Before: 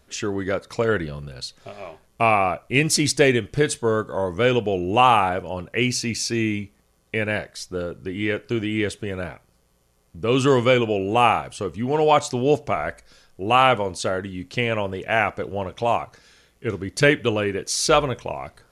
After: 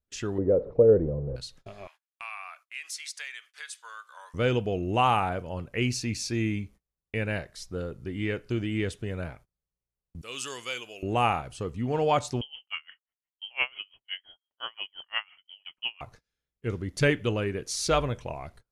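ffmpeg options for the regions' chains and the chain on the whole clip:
-filter_complex "[0:a]asettb=1/sr,asplit=3[a][b][c];[a]atrim=end=0.384[d];[b]atrim=start=0.38:end=1.36,asetpts=PTS-STARTPTS,afade=t=in:d=0.004:c=qsin,afade=t=out:st=0.976:d=0.004:c=qsin,aeval=exprs='val(0)+0.5*0.0251*sgn(val(0))':c=same,lowpass=f=490:t=q:w=4,agate=range=-33dB:threshold=-30dB:ratio=3:release=100:detection=peak[e];[c]atrim=start=1.356[f];[d][e]acrossfade=d=0.004:c1=hsin:c2=qsin[g];[g][f]acrossfade=d=0.004:c1=qsin:c2=hsin,asettb=1/sr,asplit=3[h][i][j];[h]atrim=end=1.874[k];[i]atrim=start=1.87:end=4.34,asetpts=PTS-STARTPTS,afade=t=in:d=0.004:c=qsin,afade=t=out:st=2.466:d=0.004:c=qsin,highpass=f=1.2k:w=0.5412,highpass=f=1.2k:w=1.3066,acompressor=threshold=-32dB:ratio=2:attack=3.2:release=140:knee=1:detection=peak[l];[j]atrim=start=4.336[m];[k][l]acrossfade=d=0.004:c1=hsin:c2=qsin[n];[n][m]acrossfade=d=0.004:c1=qsin:c2=hsin,asettb=1/sr,asplit=3[o][p][q];[o]atrim=end=10.214[r];[p]atrim=start=10.21:end=11.03,asetpts=PTS-STARTPTS,afade=t=in:d=0.004:c=qsin,afade=t=out:st=0.816:d=0.004:c=qsin,aderivative,acontrast=67[s];[q]atrim=start=11.026[t];[r][s]acrossfade=d=0.004:c1=hsin:c2=qsin[u];[u][t]acrossfade=d=0.004:c1=qsin:c2=hsin,asettb=1/sr,asplit=3[v][w][x];[v]atrim=end=12.414[y];[w]atrim=start=12.41:end=16.01,asetpts=PTS-STARTPTS,afade=t=in:d=0.004:c=qsin,afade=t=out:st=3.596:d=0.004:c=qsin,highpass=f=260:w=0.5412,highpass=f=260:w=1.3066,lowpass=f=3k:t=q:w=0.5098,lowpass=f=3k:t=q:w=0.6013,lowpass=f=3k:t=q:w=0.9,lowpass=f=3k:t=q:w=2.563,afreqshift=-3500,aeval=exprs='val(0)*pow(10,-32*(0.5-0.5*cos(2*PI*5.8*n/s))/20)':c=same[z];[x]atrim=start=16.006[aa];[y][z]acrossfade=d=0.004:c1=hsin:c2=qsin[ab];[ab][aa]acrossfade=d=0.004:c1=qsin:c2=hsin,agate=range=-27dB:threshold=-45dB:ratio=16:detection=peak,lowshelf=f=140:g=11,volume=-8dB"

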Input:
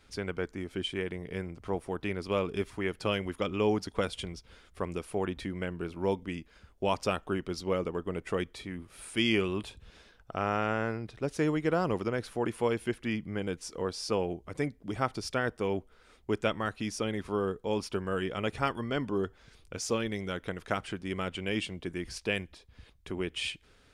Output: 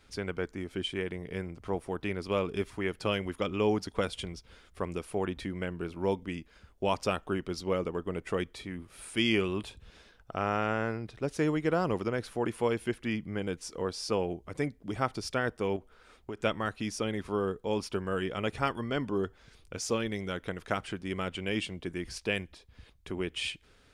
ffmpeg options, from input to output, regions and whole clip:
-filter_complex "[0:a]asettb=1/sr,asplit=3[a][b][c];[a]atrim=end=15.764[d];[b]atrim=start=15.76:end=16.42,asetpts=PTS-STARTPTS,afade=t=in:d=0.004:c=qsin,afade=t=out:st=0.656:d=0.004:c=qsin,equalizer=f=1.2k:t=o:w=2.5:g=3.5,bandreject=f=2k:w=24,acompressor=threshold=-35dB:ratio=6:attack=3.2:release=140:knee=1:detection=peak[e];[c]atrim=start=16.416[f];[d][e]acrossfade=d=0.004:c1=hsin:c2=qsin[g];[g][f]acrossfade=d=0.004:c1=qsin:c2=hsin"

